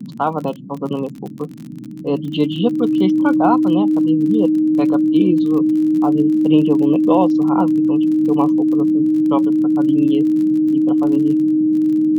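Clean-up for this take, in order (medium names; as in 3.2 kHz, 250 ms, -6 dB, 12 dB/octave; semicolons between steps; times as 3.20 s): de-click; band-stop 310 Hz, Q 30; noise print and reduce 30 dB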